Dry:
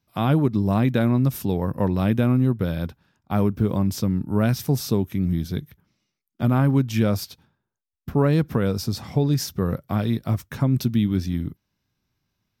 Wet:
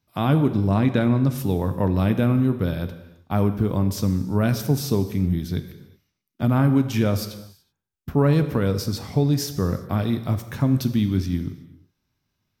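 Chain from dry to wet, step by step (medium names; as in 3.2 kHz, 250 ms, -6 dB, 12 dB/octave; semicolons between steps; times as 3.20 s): 0.67–1.38 s: low-pass 8.9 kHz 12 dB/octave; gated-style reverb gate 400 ms falling, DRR 9 dB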